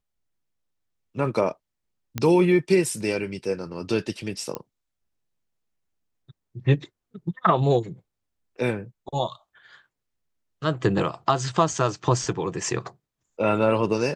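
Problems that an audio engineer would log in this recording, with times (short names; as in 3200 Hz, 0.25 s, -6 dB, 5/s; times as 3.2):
2.18 pop -11 dBFS
4.55 pop -14 dBFS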